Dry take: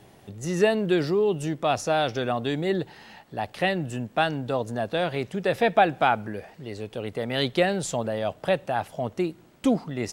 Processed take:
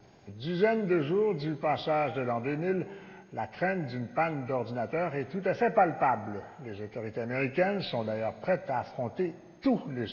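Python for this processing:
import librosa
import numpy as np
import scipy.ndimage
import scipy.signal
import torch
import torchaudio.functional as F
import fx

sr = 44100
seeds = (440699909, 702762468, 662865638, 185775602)

y = fx.freq_compress(x, sr, knee_hz=1100.0, ratio=1.5)
y = fx.rev_schroeder(y, sr, rt60_s=1.8, comb_ms=32, drr_db=14.5)
y = fx.wow_flutter(y, sr, seeds[0], rate_hz=2.1, depth_cents=42.0)
y = y * 10.0 ** (-4.5 / 20.0)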